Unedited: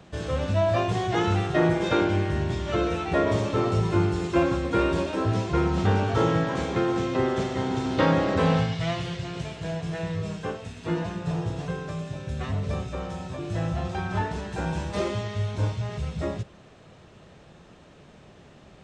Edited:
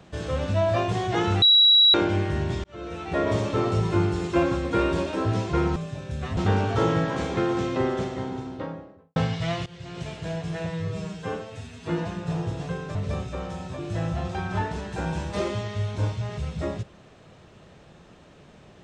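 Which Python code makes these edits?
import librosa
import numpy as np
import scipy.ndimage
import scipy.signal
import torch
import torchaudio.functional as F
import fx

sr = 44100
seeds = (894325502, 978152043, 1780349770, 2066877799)

y = fx.studio_fade_out(x, sr, start_s=7.03, length_s=1.52)
y = fx.edit(y, sr, fx.bleep(start_s=1.42, length_s=0.52, hz=3890.0, db=-12.5),
    fx.fade_in_span(start_s=2.64, length_s=0.69),
    fx.fade_in_from(start_s=9.05, length_s=0.43, floor_db=-19.0),
    fx.stretch_span(start_s=10.05, length_s=0.8, factor=1.5),
    fx.move(start_s=11.94, length_s=0.61, to_s=5.76), tone=tone)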